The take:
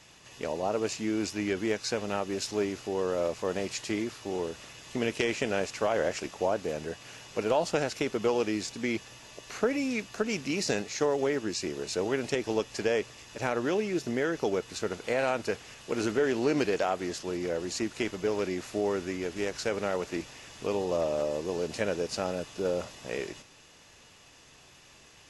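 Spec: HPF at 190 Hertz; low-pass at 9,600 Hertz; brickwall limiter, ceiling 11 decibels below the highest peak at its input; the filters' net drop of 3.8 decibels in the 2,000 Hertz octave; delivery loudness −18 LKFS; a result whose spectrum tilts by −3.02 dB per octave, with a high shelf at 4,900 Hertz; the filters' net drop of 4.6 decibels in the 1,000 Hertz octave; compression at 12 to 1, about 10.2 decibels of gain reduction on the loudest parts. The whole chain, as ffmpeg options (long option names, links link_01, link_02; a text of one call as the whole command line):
ffmpeg -i in.wav -af "highpass=190,lowpass=9600,equalizer=frequency=1000:width_type=o:gain=-6,equalizer=frequency=2000:width_type=o:gain=-4,highshelf=frequency=4900:gain=5,acompressor=threshold=-34dB:ratio=12,volume=24dB,alimiter=limit=-8dB:level=0:latency=1" out.wav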